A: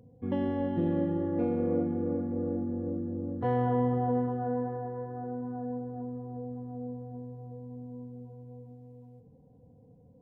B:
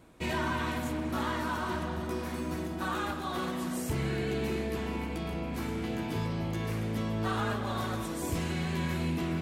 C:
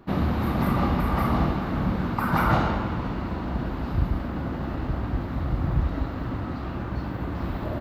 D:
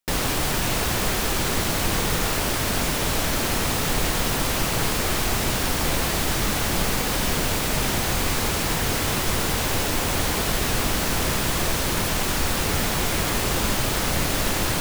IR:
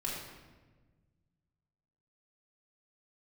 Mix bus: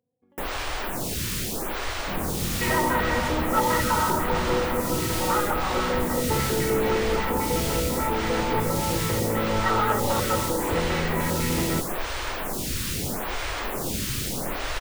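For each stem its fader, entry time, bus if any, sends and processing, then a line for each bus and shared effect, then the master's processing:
−15.0 dB, 0.00 s, no send, high-pass filter 590 Hz 6 dB per octave; downward compressor 5 to 1, threshold −45 dBFS, peak gain reduction 14 dB
−1.0 dB, 2.40 s, no send, hollow resonant body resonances 520/880/1,300/1,900 Hz, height 18 dB, ringing for 40 ms; notch on a step sequencer 10 Hz 400–7,700 Hz
−14.0 dB, 2.00 s, no send, no processing
−6.5 dB, 0.30 s, no send, phaser with staggered stages 0.78 Hz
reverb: not used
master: leveller curve on the samples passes 1

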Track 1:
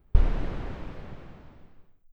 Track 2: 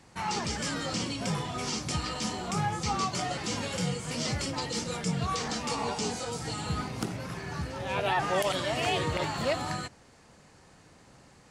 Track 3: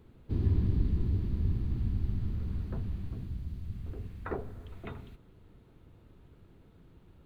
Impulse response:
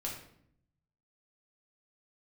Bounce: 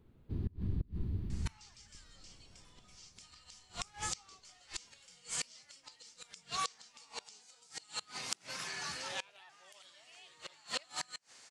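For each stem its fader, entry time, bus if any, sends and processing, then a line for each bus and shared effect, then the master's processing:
+0.5 dB, 1.80 s, send −20 dB, high-shelf EQ 2,600 Hz −9.5 dB; downward compressor, threshold −29 dBFS, peak gain reduction 17.5 dB
−5.0 dB, 1.30 s, no send, meter weighting curve ITU-R 468
−8.5 dB, 0.00 s, send −18 dB, no processing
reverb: on, RT60 0.65 s, pre-delay 5 ms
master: gate with flip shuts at −24 dBFS, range −28 dB; parametric band 160 Hz +2.5 dB

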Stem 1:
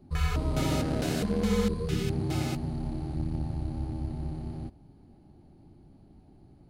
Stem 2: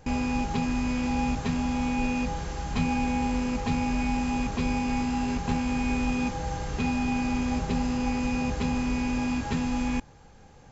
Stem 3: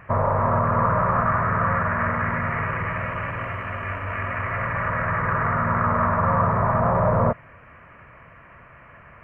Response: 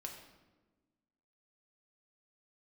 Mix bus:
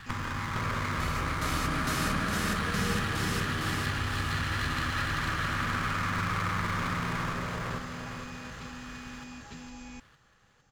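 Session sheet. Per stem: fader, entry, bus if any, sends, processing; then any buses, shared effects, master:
0.0 dB, 0.85 s, bus A, no send, echo send −9.5 dB, no processing
−18.0 dB, 0.00 s, no bus, no send, no echo send, no processing
−1.5 dB, 0.00 s, bus A, no send, echo send −6.5 dB, lower of the sound and its delayed copy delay 0.66 ms; downward compressor, threshold −25 dBFS, peak gain reduction 8.5 dB
bus A: 0.0 dB, flat-topped bell 510 Hz −9 dB 1 octave; downward compressor, threshold −32 dBFS, peak gain reduction 10.5 dB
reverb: not used
echo: repeating echo 458 ms, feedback 47%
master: high-shelf EQ 2,800 Hz +10.5 dB

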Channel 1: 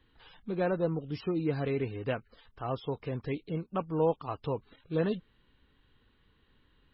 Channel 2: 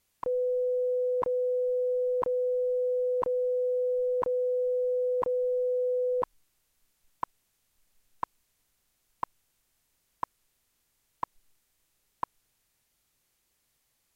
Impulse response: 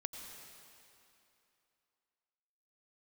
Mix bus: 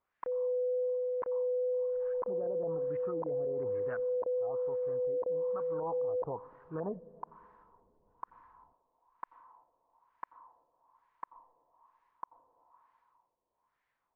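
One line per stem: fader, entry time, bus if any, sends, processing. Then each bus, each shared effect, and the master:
0:03.68 −10.5 dB → 0:04.19 −17.5 dB → 0:05.61 −17.5 dB → 0:05.94 −9.5 dB, 1.80 s, send −14 dB, auto-filter low-pass saw up 6 Hz 710–1,600 Hz
−5.0 dB, 0.00 s, send −10.5 dB, low-shelf EQ 290 Hz −11 dB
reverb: on, RT60 2.9 s, pre-delay 82 ms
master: auto-filter low-pass sine 1.1 Hz 530–1,800 Hz; brickwall limiter −28.5 dBFS, peak gain reduction 13 dB

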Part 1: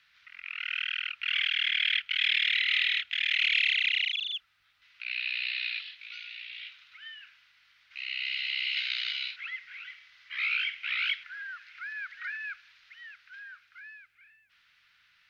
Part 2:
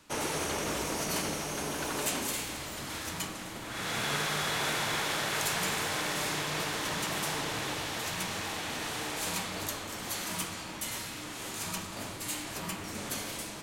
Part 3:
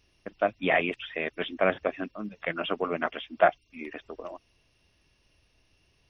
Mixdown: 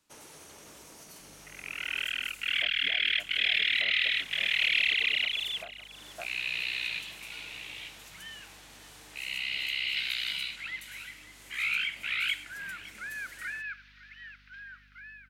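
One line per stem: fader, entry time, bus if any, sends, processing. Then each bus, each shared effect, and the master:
−0.5 dB, 1.20 s, no bus, no send, echo send −17.5 dB, mains hum 50 Hz, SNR 29 dB
−18.0 dB, 0.00 s, bus A, no send, no echo send, high-shelf EQ 3,700 Hz +7.5 dB
−15.0 dB, 2.20 s, bus A, no send, echo send −17 dB, multiband upward and downward expander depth 100%
bus A: 0.0 dB, downward compressor 5 to 1, threshold −47 dBFS, peak gain reduction 22 dB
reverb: not used
echo: single-tap delay 557 ms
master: no processing

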